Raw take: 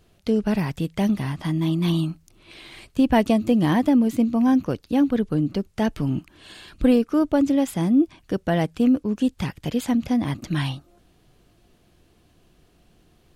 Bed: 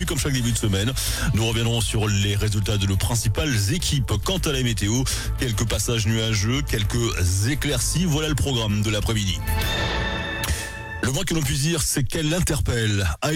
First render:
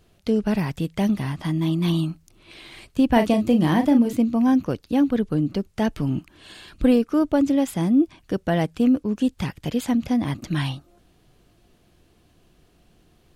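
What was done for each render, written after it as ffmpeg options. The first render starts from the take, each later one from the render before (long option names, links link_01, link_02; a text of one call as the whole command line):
ffmpeg -i in.wav -filter_complex "[0:a]asettb=1/sr,asplit=3[link_01][link_02][link_03];[link_01]atrim=end=3.124[link_04];[link_02]atrim=start=3.12:end=4.13,asetpts=PTS-STARTPTS,afade=type=in:duration=0.004:curve=qsin,afade=type=out:start_time=1.006:duration=0.004:curve=qsin,asplit=2[link_05][link_06];[link_06]adelay=38,volume=-8dB[link_07];[link_05][link_07]amix=inputs=2:normalize=0,atrim=end_sample=44541[link_08];[link_03]atrim=start=4.126[link_09];[link_04][link_08]acrossfade=duration=0.004:curve1=hsin:curve2=qsin[link_10];[link_10][link_09]acrossfade=duration=0.004:curve1=qsin:curve2=hsin" out.wav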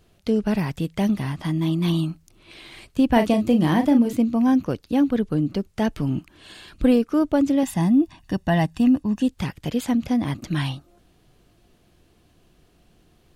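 ffmpeg -i in.wav -filter_complex "[0:a]asettb=1/sr,asplit=3[link_01][link_02][link_03];[link_01]atrim=end=7.634[link_04];[link_02]atrim=start=7.63:end=9.22,asetpts=PTS-STARTPTS,afade=type=in:duration=0.004:curve=qsin,afade=type=out:start_time=1.586:duration=0.004:curve=qsin,aecho=1:1:1.1:0.68,atrim=end_sample=70119[link_05];[link_03]atrim=start=9.216[link_06];[link_04][link_05]acrossfade=duration=0.004:curve1=hsin:curve2=qsin[link_07];[link_07][link_06]acrossfade=duration=0.004:curve1=qsin:curve2=hsin" out.wav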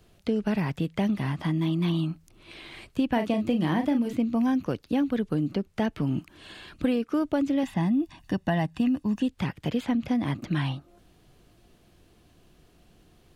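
ffmpeg -i in.wav -filter_complex "[0:a]acrossover=split=88|1600|3600[link_01][link_02][link_03][link_04];[link_01]acompressor=threshold=-54dB:ratio=4[link_05];[link_02]acompressor=threshold=-23dB:ratio=4[link_06];[link_03]acompressor=threshold=-38dB:ratio=4[link_07];[link_04]acompressor=threshold=-57dB:ratio=4[link_08];[link_05][link_06][link_07][link_08]amix=inputs=4:normalize=0" out.wav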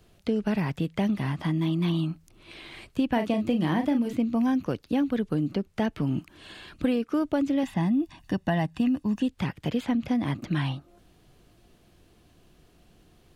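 ffmpeg -i in.wav -af anull out.wav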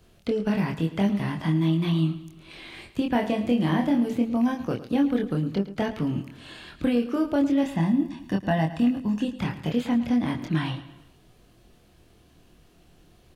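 ffmpeg -i in.wav -filter_complex "[0:a]asplit=2[link_01][link_02];[link_02]adelay=25,volume=-3.5dB[link_03];[link_01][link_03]amix=inputs=2:normalize=0,aecho=1:1:110|220|330|440:0.188|0.0904|0.0434|0.0208" out.wav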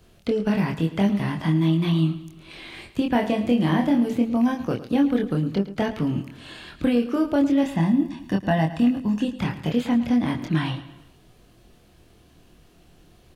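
ffmpeg -i in.wav -af "volume=2.5dB" out.wav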